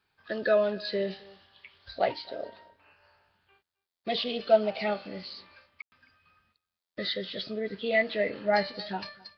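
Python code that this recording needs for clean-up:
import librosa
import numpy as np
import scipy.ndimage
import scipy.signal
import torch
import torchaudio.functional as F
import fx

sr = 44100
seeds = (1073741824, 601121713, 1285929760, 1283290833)

y = fx.fix_ambience(x, sr, seeds[0], print_start_s=3.37, print_end_s=3.87, start_s=5.82, end_s=5.92)
y = fx.fix_echo_inverse(y, sr, delay_ms=264, level_db=-24.0)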